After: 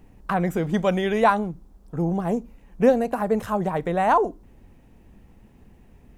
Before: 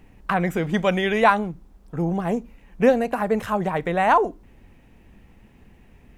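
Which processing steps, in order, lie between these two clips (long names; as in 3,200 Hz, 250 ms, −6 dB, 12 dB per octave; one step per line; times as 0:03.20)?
parametric band 2,300 Hz −7 dB 1.5 octaves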